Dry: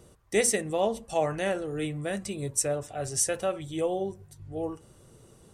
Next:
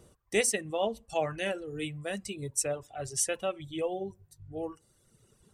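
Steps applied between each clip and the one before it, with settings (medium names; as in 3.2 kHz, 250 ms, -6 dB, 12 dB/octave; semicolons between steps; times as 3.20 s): reverb removal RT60 1.8 s; dynamic bell 2.8 kHz, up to +7 dB, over -53 dBFS, Q 2.3; trim -3 dB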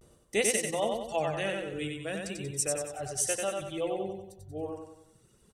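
vibrato 0.37 Hz 47 cents; feedback delay 93 ms, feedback 47%, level -3.5 dB; trim -1 dB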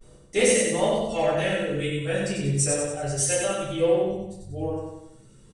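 in parallel at -4 dB: hard clipper -26 dBFS, distortion -13 dB; on the sum: simulated room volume 53 m³, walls mixed, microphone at 2.1 m; resampled via 22.05 kHz; trim -7 dB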